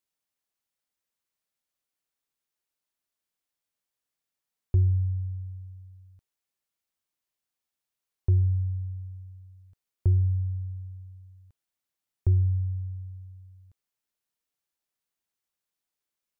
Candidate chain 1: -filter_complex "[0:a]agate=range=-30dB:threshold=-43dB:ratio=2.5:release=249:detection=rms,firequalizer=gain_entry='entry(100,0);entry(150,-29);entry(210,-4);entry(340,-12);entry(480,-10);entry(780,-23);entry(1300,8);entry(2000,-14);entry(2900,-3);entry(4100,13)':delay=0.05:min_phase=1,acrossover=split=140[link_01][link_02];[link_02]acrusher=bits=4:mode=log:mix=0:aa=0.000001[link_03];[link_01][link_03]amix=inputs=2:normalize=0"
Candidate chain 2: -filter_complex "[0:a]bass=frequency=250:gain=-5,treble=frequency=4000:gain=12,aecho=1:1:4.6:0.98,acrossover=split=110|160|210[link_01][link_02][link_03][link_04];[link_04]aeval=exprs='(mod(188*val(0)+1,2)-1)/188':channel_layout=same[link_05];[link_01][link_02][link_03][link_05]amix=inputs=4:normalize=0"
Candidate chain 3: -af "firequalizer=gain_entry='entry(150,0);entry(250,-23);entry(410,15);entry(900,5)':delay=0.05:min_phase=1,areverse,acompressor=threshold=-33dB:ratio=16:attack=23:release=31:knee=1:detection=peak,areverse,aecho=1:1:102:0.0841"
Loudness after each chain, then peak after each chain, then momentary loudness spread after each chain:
−28.0, −39.5, −37.5 LKFS; −16.0, −20.5, −27.0 dBFS; 19, 21, 17 LU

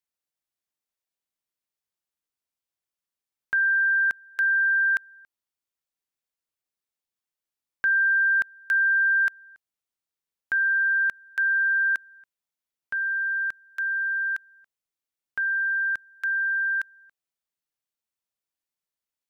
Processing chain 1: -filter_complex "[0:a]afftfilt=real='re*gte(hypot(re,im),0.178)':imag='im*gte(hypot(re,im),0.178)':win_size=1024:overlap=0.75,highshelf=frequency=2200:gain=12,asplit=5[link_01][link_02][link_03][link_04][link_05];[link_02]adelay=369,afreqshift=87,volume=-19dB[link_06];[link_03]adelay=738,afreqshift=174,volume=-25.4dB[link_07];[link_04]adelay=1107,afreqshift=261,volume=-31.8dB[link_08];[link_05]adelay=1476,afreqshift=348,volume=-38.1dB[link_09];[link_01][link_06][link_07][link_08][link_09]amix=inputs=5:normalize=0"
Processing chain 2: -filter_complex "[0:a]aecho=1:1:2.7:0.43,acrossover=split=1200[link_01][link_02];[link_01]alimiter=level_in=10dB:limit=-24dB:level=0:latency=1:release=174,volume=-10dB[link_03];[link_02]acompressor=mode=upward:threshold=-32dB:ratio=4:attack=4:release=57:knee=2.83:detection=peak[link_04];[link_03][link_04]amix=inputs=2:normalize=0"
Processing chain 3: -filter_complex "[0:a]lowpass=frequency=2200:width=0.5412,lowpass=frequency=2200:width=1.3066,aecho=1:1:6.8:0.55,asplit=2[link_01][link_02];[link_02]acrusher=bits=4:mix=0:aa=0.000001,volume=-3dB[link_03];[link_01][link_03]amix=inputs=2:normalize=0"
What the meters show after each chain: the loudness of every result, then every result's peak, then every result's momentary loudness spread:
−19.0, −23.0, −18.0 LKFS; −12.0, −8.0, −13.0 dBFS; 19, 18, 9 LU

